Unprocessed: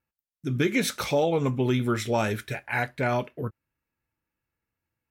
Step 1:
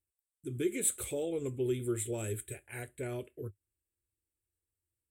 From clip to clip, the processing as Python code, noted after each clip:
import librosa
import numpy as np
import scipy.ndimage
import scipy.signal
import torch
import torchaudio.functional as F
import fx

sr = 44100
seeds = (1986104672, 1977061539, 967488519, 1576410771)

y = fx.curve_eq(x, sr, hz=(100.0, 150.0, 250.0, 370.0, 860.0, 3200.0, 5600.0, 8000.0, 13000.0), db=(0, -15, -12, 0, -22, -9, -24, 13, 1))
y = F.gain(torch.from_numpy(y), -3.5).numpy()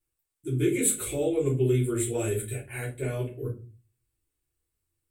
y = fx.room_shoebox(x, sr, seeds[0], volume_m3=140.0, walls='furnished', distance_m=3.2)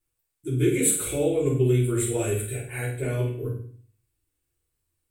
y = fx.room_flutter(x, sr, wall_m=8.4, rt60_s=0.47)
y = F.gain(torch.from_numpy(y), 2.0).numpy()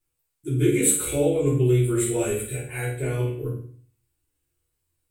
y = fx.doubler(x, sr, ms=14.0, db=-4.0)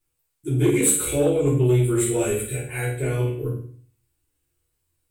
y = 10.0 ** (-12.0 / 20.0) * np.tanh(x / 10.0 ** (-12.0 / 20.0))
y = F.gain(torch.from_numpy(y), 2.5).numpy()